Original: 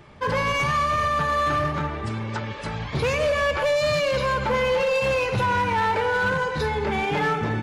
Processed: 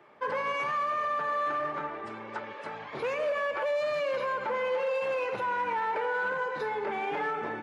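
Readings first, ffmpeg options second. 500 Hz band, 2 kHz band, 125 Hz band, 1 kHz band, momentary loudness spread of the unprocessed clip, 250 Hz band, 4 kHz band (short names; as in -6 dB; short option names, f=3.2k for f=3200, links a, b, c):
-7.0 dB, -8.0 dB, -25.0 dB, -6.5 dB, 8 LU, -14.0 dB, -14.0 dB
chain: -filter_complex "[0:a]highpass=140,acrossover=split=300 2400:gain=0.126 1 0.224[a][b][c];[a][b][c]amix=inputs=3:normalize=0,alimiter=limit=-18.5dB:level=0:latency=1:release=49,volume=-4.5dB"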